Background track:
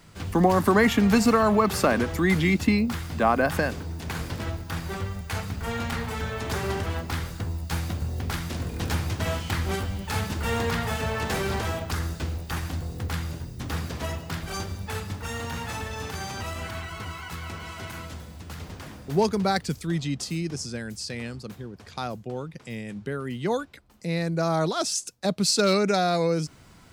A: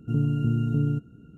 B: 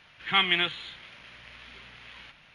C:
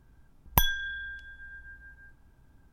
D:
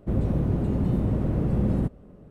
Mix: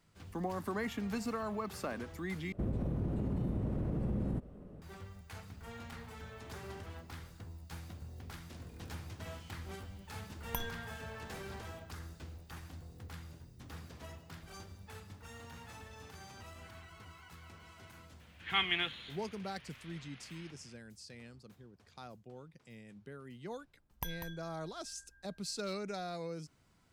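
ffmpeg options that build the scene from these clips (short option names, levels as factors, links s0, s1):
-filter_complex "[3:a]asplit=2[s0][s1];[0:a]volume=0.126[s2];[4:a]acompressor=threshold=0.0398:ratio=6:attack=3.2:release=140:knee=1:detection=peak[s3];[s1]aecho=1:1:195:0.398[s4];[s2]asplit=2[s5][s6];[s5]atrim=end=2.524[s7];[s3]atrim=end=2.3,asetpts=PTS-STARTPTS,volume=0.708[s8];[s6]atrim=start=4.816[s9];[s0]atrim=end=2.72,asetpts=PTS-STARTPTS,volume=0.168,afade=t=in:d=0.004:c=hsin,afade=t=out:st=2.716:d=0.004:c=hsin,adelay=9970[s10];[2:a]atrim=end=2.54,asetpts=PTS-STARTPTS,volume=0.376,afade=t=in:d=0.004:c=hsin,afade=t=out:st=2.536:d=0.004:c=hsin,adelay=18200[s11];[s4]atrim=end=2.72,asetpts=PTS-STARTPTS,volume=0.133,afade=t=in:d=0.004:c=hsin,afade=t=out:st=2.716:d=0.004:c=hsin,adelay=23450[s12];[s7][s8]acrossfade=d=0.004:c1=hsin:c2=hsin[s13];[s13][s9]acrossfade=d=0.004:c1=hsin:c2=hsin[s14];[s14][s10][s11][s12]amix=inputs=4:normalize=0"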